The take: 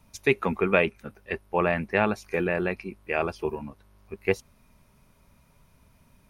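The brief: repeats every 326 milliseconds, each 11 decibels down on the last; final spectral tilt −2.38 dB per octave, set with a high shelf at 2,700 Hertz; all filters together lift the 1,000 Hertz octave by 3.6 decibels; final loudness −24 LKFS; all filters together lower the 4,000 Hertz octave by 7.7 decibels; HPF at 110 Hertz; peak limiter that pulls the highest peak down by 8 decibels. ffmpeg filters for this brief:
ffmpeg -i in.wav -af "highpass=110,equalizer=frequency=1000:width_type=o:gain=6,highshelf=frequency=2700:gain=-6.5,equalizer=frequency=4000:width_type=o:gain=-7,alimiter=limit=-12.5dB:level=0:latency=1,aecho=1:1:326|652|978:0.282|0.0789|0.0221,volume=5dB" out.wav

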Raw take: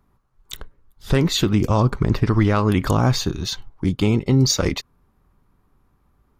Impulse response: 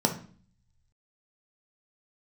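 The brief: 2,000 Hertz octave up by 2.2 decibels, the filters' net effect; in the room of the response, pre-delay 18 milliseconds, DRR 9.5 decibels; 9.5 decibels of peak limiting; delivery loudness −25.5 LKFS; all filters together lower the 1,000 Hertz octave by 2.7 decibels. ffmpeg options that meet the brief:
-filter_complex "[0:a]equalizer=frequency=1000:width_type=o:gain=-4.5,equalizer=frequency=2000:width_type=o:gain=4,alimiter=limit=-15dB:level=0:latency=1,asplit=2[link_01][link_02];[1:a]atrim=start_sample=2205,adelay=18[link_03];[link_02][link_03]afir=irnorm=-1:irlink=0,volume=-20.5dB[link_04];[link_01][link_04]amix=inputs=2:normalize=0,volume=-1dB"

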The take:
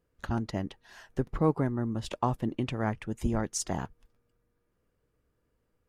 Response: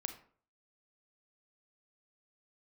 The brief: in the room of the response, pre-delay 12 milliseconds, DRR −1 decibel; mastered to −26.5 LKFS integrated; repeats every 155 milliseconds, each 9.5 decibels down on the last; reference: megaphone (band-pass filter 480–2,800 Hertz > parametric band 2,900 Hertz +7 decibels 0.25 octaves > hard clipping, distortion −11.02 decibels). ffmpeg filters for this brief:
-filter_complex "[0:a]aecho=1:1:155|310|465|620:0.335|0.111|0.0365|0.012,asplit=2[link_01][link_02];[1:a]atrim=start_sample=2205,adelay=12[link_03];[link_02][link_03]afir=irnorm=-1:irlink=0,volume=2dB[link_04];[link_01][link_04]amix=inputs=2:normalize=0,highpass=480,lowpass=2800,equalizer=frequency=2900:width_type=o:width=0.25:gain=7,asoftclip=type=hard:threshold=-25dB,volume=9dB"

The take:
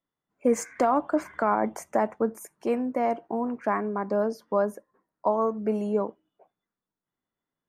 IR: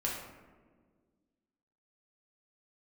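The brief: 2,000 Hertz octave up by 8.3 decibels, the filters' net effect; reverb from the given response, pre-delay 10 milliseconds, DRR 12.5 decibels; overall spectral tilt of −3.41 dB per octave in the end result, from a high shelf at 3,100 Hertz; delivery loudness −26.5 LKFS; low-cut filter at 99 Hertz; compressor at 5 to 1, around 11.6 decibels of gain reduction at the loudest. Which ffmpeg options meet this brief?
-filter_complex "[0:a]highpass=99,equalizer=frequency=2000:width_type=o:gain=9,highshelf=frequency=3100:gain=6.5,acompressor=threshold=-30dB:ratio=5,asplit=2[link_01][link_02];[1:a]atrim=start_sample=2205,adelay=10[link_03];[link_02][link_03]afir=irnorm=-1:irlink=0,volume=-17dB[link_04];[link_01][link_04]amix=inputs=2:normalize=0,volume=8dB"

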